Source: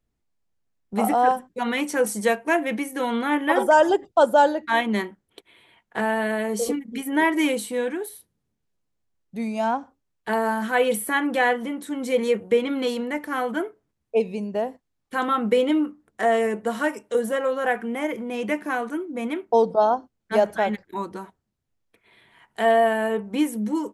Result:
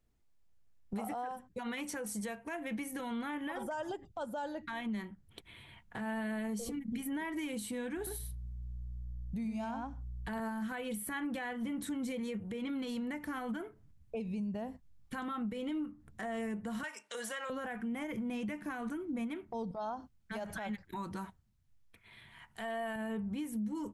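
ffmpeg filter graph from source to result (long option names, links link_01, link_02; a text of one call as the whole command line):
ffmpeg -i in.wav -filter_complex "[0:a]asettb=1/sr,asplit=3[link_01][link_02][link_03];[link_01]atrim=end=7.974[link_04];[link_02]atrim=start=7.97:end=10.4,asetpts=PTS-STARTPTS,afade=type=in:duration=0.004:curve=qsin,afade=type=out:start_time=2.426:duration=0.004:curve=qsin,aeval=exprs='val(0)+0.000891*(sin(2*PI*60*n/s)+sin(2*PI*2*60*n/s)/2+sin(2*PI*3*60*n/s)/3+sin(2*PI*4*60*n/s)/4+sin(2*PI*5*60*n/s)/5)':channel_layout=same,aecho=1:1:98:0.531,atrim=end_sample=107163[link_05];[link_03]atrim=start=10.396[link_06];[link_04][link_05]acrossfade=duration=0.004:curve1=hsin:curve2=qsin[link_07];[link_07][link_06]acrossfade=duration=0.004:curve1=qsin:curve2=hsin,asettb=1/sr,asplit=3[link_08][link_09][link_10];[link_08]atrim=end=16.834[link_11];[link_09]atrim=start=16.83:end=17.5,asetpts=PTS-STARTPTS,afade=type=in:duration=0.004:curve=qsin,afade=type=out:start_time=0.666:duration=0.004:curve=qsin,highpass=570,lowpass=7100,tiltshelf=frequency=1200:gain=-6.5[link_12];[link_10]atrim=start=17.496[link_13];[link_11][link_12]acrossfade=duration=0.004:curve1=hsin:curve2=qsin[link_14];[link_14][link_13]acrossfade=duration=0.004:curve1=qsin:curve2=hsin,asettb=1/sr,asplit=3[link_15][link_16][link_17];[link_15]atrim=end=19.714[link_18];[link_16]atrim=start=19.71:end=22.96,asetpts=PTS-STARTPTS,afade=type=in:duration=0.004:curve=qsin,afade=type=out:start_time=3.246:duration=0.004:curve=qsin,lowshelf=frequency=410:gain=-9,acompressor=threshold=-30dB:ratio=2.5:attack=3.2:release=140:knee=1:detection=peak[link_19];[link_17]atrim=start=22.956[link_20];[link_18][link_19]acrossfade=duration=0.004:curve1=hsin:curve2=qsin[link_21];[link_21][link_20]acrossfade=duration=0.004:curve1=qsin:curve2=hsin,asubboost=boost=10.5:cutoff=130,acompressor=threshold=-33dB:ratio=10,alimiter=level_in=7dB:limit=-24dB:level=0:latency=1:release=71,volume=-7dB" out.wav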